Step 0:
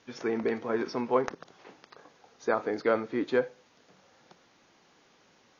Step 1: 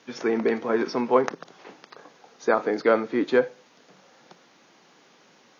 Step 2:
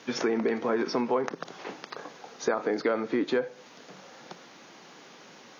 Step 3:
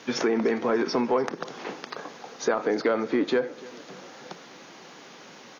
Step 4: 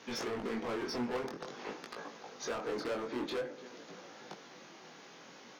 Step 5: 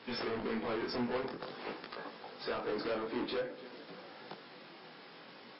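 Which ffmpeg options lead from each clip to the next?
ffmpeg -i in.wav -af "highpass=frequency=140:width=0.5412,highpass=frequency=140:width=1.3066,volume=6dB" out.wav
ffmpeg -i in.wav -filter_complex "[0:a]asplit=2[link_01][link_02];[link_02]alimiter=limit=-16.5dB:level=0:latency=1,volume=0.5dB[link_03];[link_01][link_03]amix=inputs=2:normalize=0,acompressor=threshold=-25dB:ratio=4" out.wav
ffmpeg -i in.wav -af "asoftclip=type=tanh:threshold=-15dB,aecho=1:1:294|588|882|1176|1470:0.0944|0.0557|0.0329|0.0194|0.0114,volume=3.5dB" out.wav
ffmpeg -i in.wav -af "asoftclip=type=hard:threshold=-27dB,flanger=delay=17.5:depth=7.1:speed=0.5,volume=-4dB" out.wav
ffmpeg -i in.wav -af "volume=1dB" -ar 12000 -c:a libmp3lame -b:a 24k out.mp3

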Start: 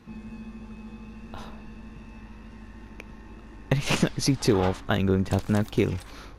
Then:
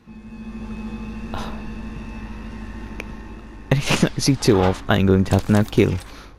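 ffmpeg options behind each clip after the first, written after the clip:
ffmpeg -i in.wav -af "dynaudnorm=framelen=110:gausssize=9:maxgain=11dB" out.wav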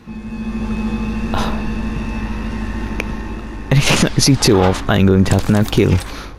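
ffmpeg -i in.wav -af "alimiter=level_in=11.5dB:limit=-1dB:release=50:level=0:latency=1,volume=-1dB" out.wav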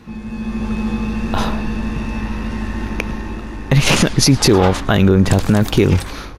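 ffmpeg -i in.wav -af "aecho=1:1:107:0.0631" out.wav

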